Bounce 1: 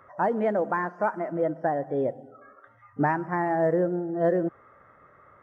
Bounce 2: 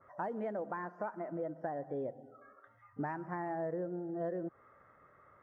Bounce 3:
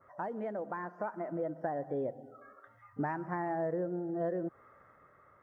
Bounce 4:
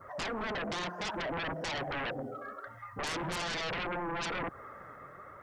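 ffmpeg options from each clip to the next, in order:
ffmpeg -i in.wav -af "acompressor=threshold=-29dB:ratio=3,adynamicequalizer=threshold=0.00562:dfrequency=1700:dqfactor=0.7:tfrequency=1700:tqfactor=0.7:attack=5:release=100:ratio=0.375:range=2.5:mode=cutabove:tftype=highshelf,volume=-7.5dB" out.wav
ffmpeg -i in.wav -af "dynaudnorm=framelen=300:gausssize=7:maxgain=3.5dB" out.wav
ffmpeg -i in.wav -af "flanger=delay=0.6:depth=8:regen=58:speed=1.1:shape=triangular,aeval=exprs='0.0501*sin(PI/2*8.91*val(0)/0.0501)':channel_layout=same,volume=-6.5dB" out.wav

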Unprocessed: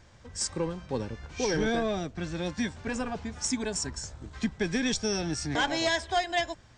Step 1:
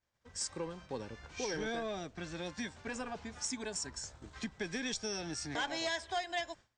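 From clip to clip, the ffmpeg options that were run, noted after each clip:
ffmpeg -i in.wav -af "agate=range=-33dB:threshold=-40dB:ratio=3:detection=peak,lowshelf=frequency=290:gain=-8.5,acompressor=threshold=-50dB:ratio=1.5,volume=1dB" out.wav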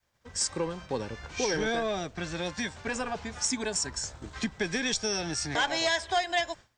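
ffmpeg -i in.wav -af "adynamicequalizer=threshold=0.00178:dfrequency=270:dqfactor=1.7:tfrequency=270:tqfactor=1.7:attack=5:release=100:ratio=0.375:range=2.5:mode=cutabove:tftype=bell,volume=9dB" out.wav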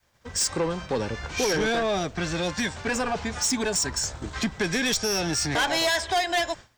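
ffmpeg -i in.wav -af "asoftclip=type=tanh:threshold=-28dB,volume=8.5dB" out.wav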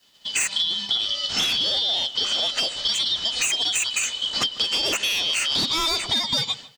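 ffmpeg -i in.wav -filter_complex "[0:a]afftfilt=real='real(if(lt(b,272),68*(eq(floor(b/68),0)*2+eq(floor(b/68),1)*3+eq(floor(b/68),2)*0+eq(floor(b/68),3)*1)+mod(b,68),b),0)':imag='imag(if(lt(b,272),68*(eq(floor(b/68),0)*2+eq(floor(b/68),1)*3+eq(floor(b/68),2)*0+eq(floor(b/68),3)*1)+mod(b,68),b),0)':win_size=2048:overlap=0.75,acompressor=threshold=-29dB:ratio=6,asplit=2[link_01][link_02];[link_02]adelay=150,lowpass=frequency=2800:poles=1,volume=-18dB,asplit=2[link_03][link_04];[link_04]adelay=150,lowpass=frequency=2800:poles=1,volume=0.35,asplit=2[link_05][link_06];[link_06]adelay=150,lowpass=frequency=2800:poles=1,volume=0.35[link_07];[link_01][link_03][link_05][link_07]amix=inputs=4:normalize=0,volume=8.5dB" out.wav

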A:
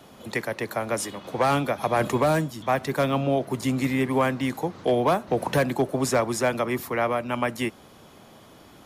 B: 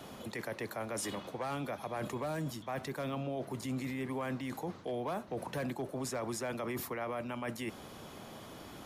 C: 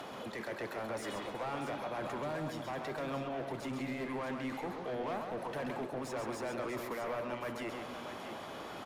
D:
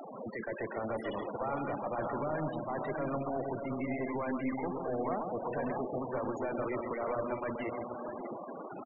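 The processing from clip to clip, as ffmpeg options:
ffmpeg -i in.wav -af "areverse,acompressor=threshold=-32dB:ratio=12,areverse,alimiter=level_in=6.5dB:limit=-24dB:level=0:latency=1:release=25,volume=-6.5dB,volume=1dB" out.wav
ffmpeg -i in.wav -filter_complex "[0:a]acompressor=mode=upward:threshold=-44dB:ratio=2.5,asplit=2[link_01][link_02];[link_02]highpass=frequency=720:poles=1,volume=18dB,asoftclip=type=tanh:threshold=-29dB[link_03];[link_01][link_03]amix=inputs=2:normalize=0,lowpass=frequency=1800:poles=1,volume=-6dB,asplit=2[link_04][link_05];[link_05]aecho=0:1:133|271|368|637:0.531|0.126|0.133|0.355[link_06];[link_04][link_06]amix=inputs=2:normalize=0,volume=-3.5dB" out.wav
ffmpeg -i in.wav -filter_complex "[0:a]asplit=2[link_01][link_02];[link_02]adelay=583.1,volume=-7dB,highshelf=frequency=4000:gain=-13.1[link_03];[link_01][link_03]amix=inputs=2:normalize=0,aeval=exprs='0.0473*(cos(1*acos(clip(val(0)/0.0473,-1,1)))-cos(1*PI/2))+0.00944*(cos(2*acos(clip(val(0)/0.0473,-1,1)))-cos(2*PI/2))':channel_layout=same,afftfilt=real='re*gte(hypot(re,im),0.0158)':imag='im*gte(hypot(re,im),0.0158)':win_size=1024:overlap=0.75,volume=3dB" out.wav

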